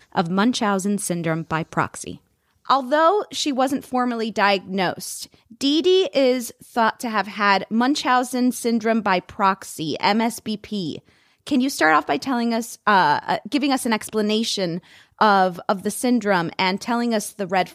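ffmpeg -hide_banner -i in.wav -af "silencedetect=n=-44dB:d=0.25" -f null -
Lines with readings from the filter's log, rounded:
silence_start: 2.18
silence_end: 2.65 | silence_duration: 0.48
silence_start: 11.12
silence_end: 11.47 | silence_duration: 0.35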